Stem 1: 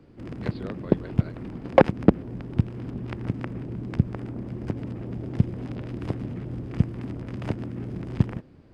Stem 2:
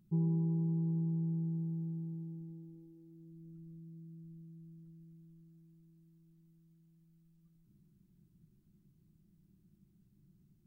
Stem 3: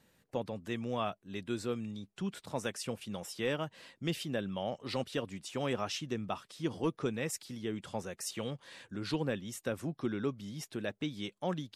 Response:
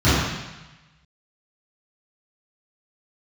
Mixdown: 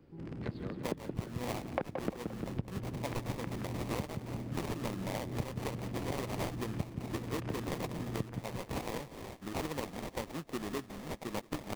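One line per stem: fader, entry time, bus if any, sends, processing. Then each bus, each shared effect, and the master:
-7.5 dB, 0.00 s, no send, echo send -8.5 dB, vibrato 9.8 Hz 54 cents
-9.0 dB, 0.00 s, no send, no echo send, HPF 210 Hz 24 dB/oct
-1.5 dB, 0.50 s, no send, echo send -18 dB, weighting filter D; sample-rate reducer 1500 Hz, jitter 20%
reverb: off
echo: feedback echo 0.174 s, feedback 45%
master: compressor 8:1, threshold -32 dBFS, peak gain reduction 15.5 dB

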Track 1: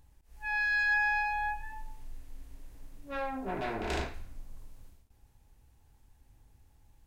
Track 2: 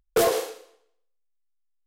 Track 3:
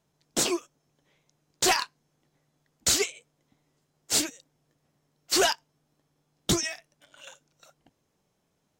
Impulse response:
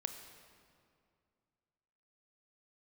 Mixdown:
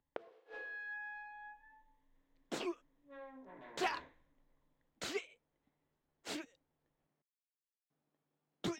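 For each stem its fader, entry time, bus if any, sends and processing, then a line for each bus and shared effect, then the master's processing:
-19.0 dB, 0.00 s, no send, ripple EQ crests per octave 1.1, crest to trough 10 dB
-4.0 dB, 0.00 s, no send, LPF 5100 Hz
-11.0 dB, 2.15 s, muted 7.22–7.9, no send, dry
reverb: off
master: three-band isolator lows -15 dB, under 150 Hz, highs -18 dB, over 3300 Hz; flipped gate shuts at -24 dBFS, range -35 dB

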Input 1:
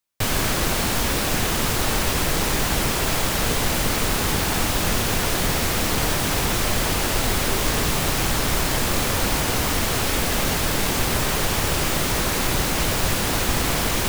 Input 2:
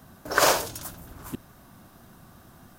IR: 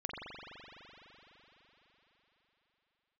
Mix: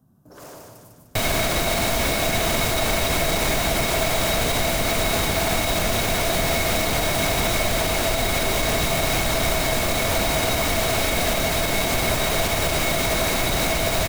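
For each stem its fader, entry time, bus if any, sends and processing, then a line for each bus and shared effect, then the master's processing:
+0.5 dB, 0.95 s, no send, no echo send, small resonant body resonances 660/2200/3800 Hz, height 14 dB, ringing for 55 ms
-16.0 dB, 0.00 s, no send, echo send -3.5 dB, graphic EQ 125/250/2000/4000 Hz +10/+7/-11/-6 dB; hard clip -23.5 dBFS, distortion -6 dB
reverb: off
echo: feedback echo 0.15 s, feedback 54%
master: limiter -11.5 dBFS, peak gain reduction 5.5 dB

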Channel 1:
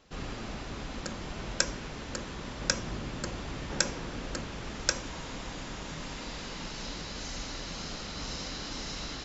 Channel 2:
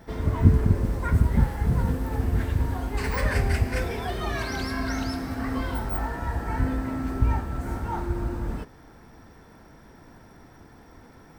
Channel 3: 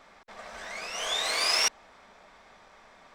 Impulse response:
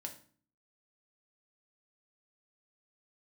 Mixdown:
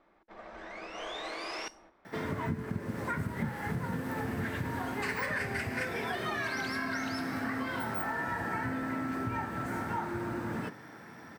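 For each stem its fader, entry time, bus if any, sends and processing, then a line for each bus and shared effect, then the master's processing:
off
-2.0 dB, 2.05 s, no bus, send -7 dB, HPF 120 Hz 24 dB/oct; bell 1800 Hz +7.5 dB 1.2 oct; compressor 6:1, threshold -31 dBFS, peak gain reduction 16 dB
-1.0 dB, 0.00 s, bus A, send -21.5 dB, gate -49 dBFS, range -8 dB; bell 330 Hz +13.5 dB 0.28 oct
bus A: 0.0 dB, tape spacing loss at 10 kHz 36 dB; limiter -31.5 dBFS, peak gain reduction 7.5 dB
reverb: on, RT60 0.45 s, pre-delay 3 ms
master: dry

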